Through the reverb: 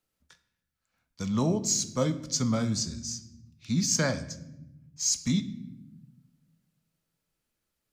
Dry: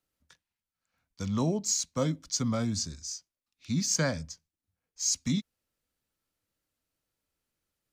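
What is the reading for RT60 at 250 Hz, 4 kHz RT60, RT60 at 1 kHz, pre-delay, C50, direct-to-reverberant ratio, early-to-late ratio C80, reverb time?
1.6 s, 0.65 s, 0.75 s, 5 ms, 14.5 dB, 9.0 dB, 16.5 dB, 0.90 s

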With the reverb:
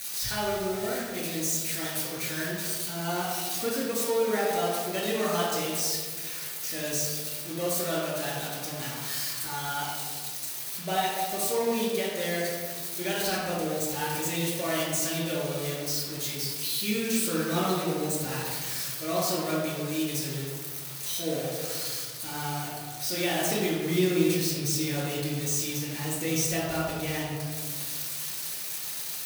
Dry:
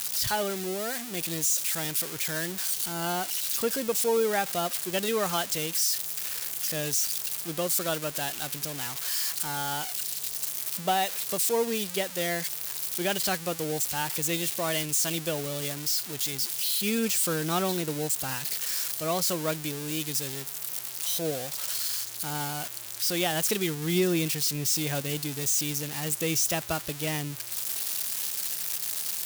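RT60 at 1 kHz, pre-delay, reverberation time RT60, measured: 1.5 s, 3 ms, 1.7 s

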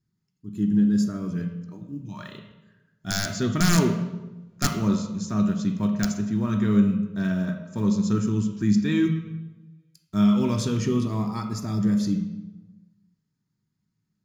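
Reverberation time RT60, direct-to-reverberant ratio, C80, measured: 1.1 s, 3.5 dB, 9.5 dB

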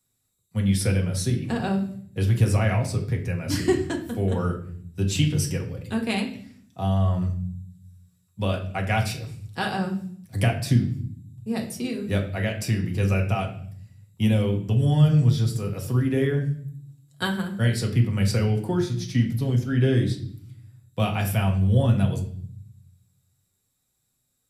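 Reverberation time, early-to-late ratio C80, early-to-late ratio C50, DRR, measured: 0.55 s, 13.0 dB, 10.0 dB, 0.5 dB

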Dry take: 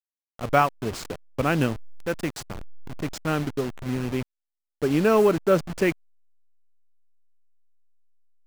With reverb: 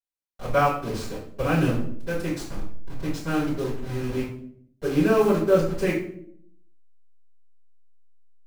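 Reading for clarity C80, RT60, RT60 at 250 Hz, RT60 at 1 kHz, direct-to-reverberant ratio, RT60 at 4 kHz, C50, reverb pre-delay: 8.5 dB, 0.65 s, 1.0 s, 0.50 s, -13.0 dB, 0.45 s, 5.0 dB, 3 ms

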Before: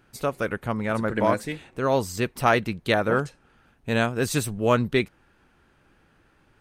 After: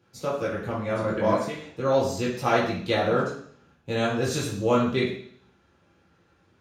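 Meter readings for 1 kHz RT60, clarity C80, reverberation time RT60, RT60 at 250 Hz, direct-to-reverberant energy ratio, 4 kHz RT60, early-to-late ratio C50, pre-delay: 0.55 s, 7.5 dB, 0.60 s, 0.65 s, -6.0 dB, 0.75 s, 4.0 dB, 3 ms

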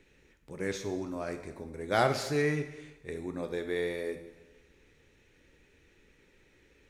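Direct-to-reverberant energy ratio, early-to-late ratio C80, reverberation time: 7.0 dB, 12.0 dB, 1.0 s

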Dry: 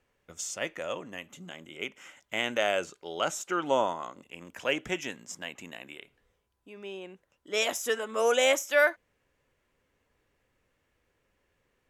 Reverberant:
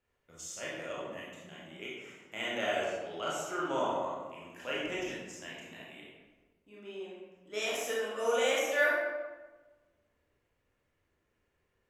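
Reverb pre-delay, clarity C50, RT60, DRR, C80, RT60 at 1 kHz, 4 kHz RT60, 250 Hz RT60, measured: 23 ms, -0.5 dB, 1.3 s, -6.5 dB, 2.5 dB, 1.2 s, 0.80 s, 1.6 s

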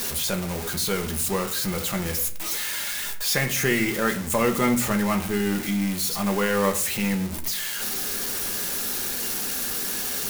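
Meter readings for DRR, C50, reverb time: 3.5 dB, 12.5 dB, 0.55 s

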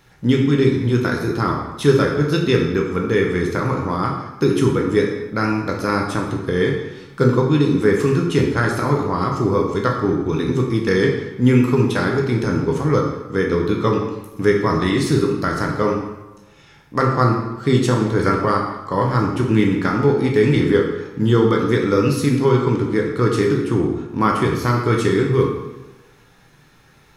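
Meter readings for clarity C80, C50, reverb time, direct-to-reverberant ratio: 6.5 dB, 4.0 dB, 1.1 s, -0.5 dB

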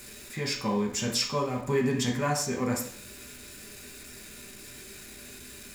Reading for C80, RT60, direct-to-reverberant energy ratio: 11.0 dB, 0.55 s, -1.5 dB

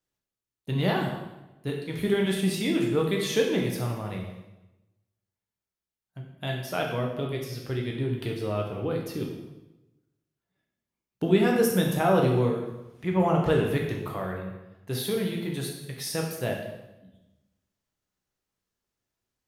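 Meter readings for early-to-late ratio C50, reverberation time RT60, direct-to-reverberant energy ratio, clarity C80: 4.0 dB, 1.0 s, 0.0 dB, 6.0 dB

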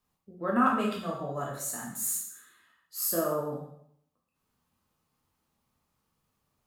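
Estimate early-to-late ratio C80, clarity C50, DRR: 7.0 dB, 3.5 dB, -3.5 dB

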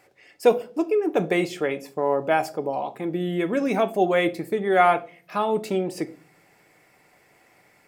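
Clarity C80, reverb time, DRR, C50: 23.5 dB, 0.40 s, 10.0 dB, 18.5 dB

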